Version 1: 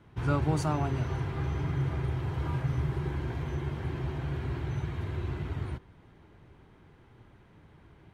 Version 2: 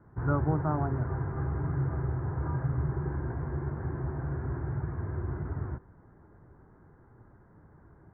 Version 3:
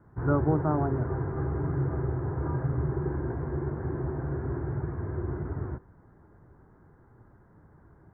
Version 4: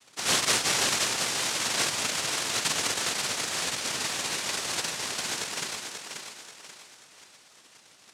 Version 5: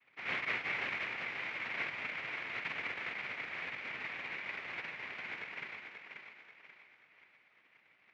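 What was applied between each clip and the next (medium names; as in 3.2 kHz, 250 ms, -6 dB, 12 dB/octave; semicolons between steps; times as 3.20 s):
steep low-pass 1.7 kHz 48 dB/octave
dynamic bell 390 Hz, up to +7 dB, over -45 dBFS, Q 0.97
noise-vocoded speech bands 1; thinning echo 535 ms, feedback 41%, high-pass 160 Hz, level -6 dB
four-pole ladder low-pass 2.4 kHz, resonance 70%; trim -2.5 dB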